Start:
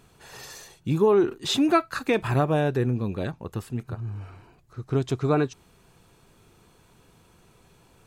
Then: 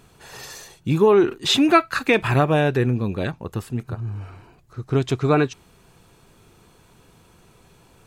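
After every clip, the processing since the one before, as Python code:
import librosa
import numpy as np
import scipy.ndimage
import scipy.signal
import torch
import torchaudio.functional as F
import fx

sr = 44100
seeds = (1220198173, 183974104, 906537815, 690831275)

y = fx.dynamic_eq(x, sr, hz=2400.0, q=0.98, threshold_db=-44.0, ratio=4.0, max_db=6)
y = F.gain(torch.from_numpy(y), 4.0).numpy()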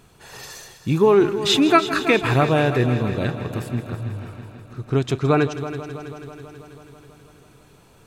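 y = fx.echo_heads(x, sr, ms=163, heads='first and second', feedback_pct=67, wet_db=-15.0)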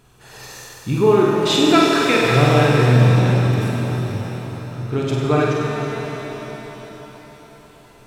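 y = fx.room_flutter(x, sr, wall_m=8.3, rt60_s=0.72)
y = fx.rev_shimmer(y, sr, seeds[0], rt60_s=3.7, semitones=7, shimmer_db=-8, drr_db=0.5)
y = F.gain(torch.from_numpy(y), -2.5).numpy()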